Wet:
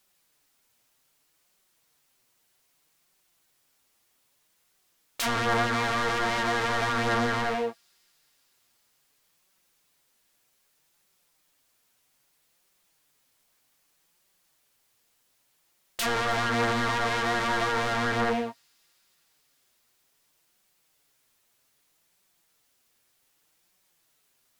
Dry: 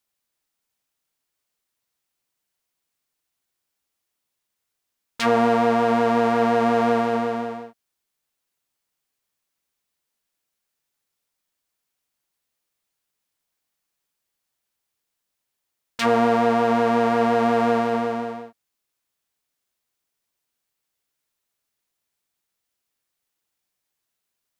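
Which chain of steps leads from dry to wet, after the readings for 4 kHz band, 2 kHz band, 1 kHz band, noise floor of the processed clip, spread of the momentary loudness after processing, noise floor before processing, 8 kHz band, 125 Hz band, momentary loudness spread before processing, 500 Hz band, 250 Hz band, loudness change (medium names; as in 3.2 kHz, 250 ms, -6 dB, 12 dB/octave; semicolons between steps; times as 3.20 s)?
+3.0 dB, +2.5 dB, -6.0 dB, -70 dBFS, 6 LU, -81 dBFS, +5.0 dB, 0.0 dB, 11 LU, -10.0 dB, -10.5 dB, -6.5 dB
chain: compression 12:1, threshold -23 dBFS, peak gain reduction 10.5 dB; sine folder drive 20 dB, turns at -9 dBFS; flange 0.63 Hz, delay 5.1 ms, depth 3.6 ms, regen +45%; feedback echo behind a high-pass 313 ms, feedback 68%, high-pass 5.5 kHz, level -23 dB; trim -9 dB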